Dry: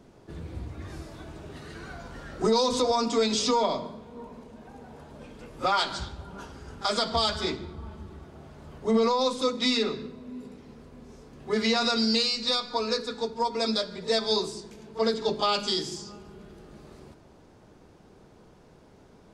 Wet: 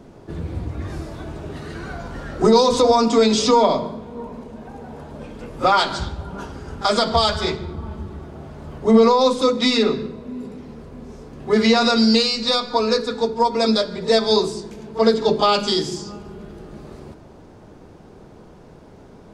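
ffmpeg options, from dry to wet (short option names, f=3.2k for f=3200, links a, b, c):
-filter_complex "[0:a]asettb=1/sr,asplit=3[a][b][c];[a]atrim=end=7.144[d];[b]atrim=start=7.14:end=7.69,asetpts=PTS-STARTPTS,afade=t=in:d=0.004:c=qsin,afade=t=out:st=0.546:d=0.004:c=qsin,equalizer=f=280:w=3.2:g=-12.5[e];[c]atrim=start=7.686[f];[d][e]acrossfade=d=0.004:c1=hsin:c2=qsin[g];[g][f]acrossfade=d=0.004:c1=qsin:c2=hsin,tiltshelf=f=1.4k:g=3,bandreject=f=63.28:t=h:w=4,bandreject=f=126.56:t=h:w=4,bandreject=f=189.84:t=h:w=4,bandreject=f=253.12:t=h:w=4,bandreject=f=316.4:t=h:w=4,bandreject=f=379.68:t=h:w=4,bandreject=f=442.96:t=h:w=4,bandreject=f=506.24:t=h:w=4,volume=8dB"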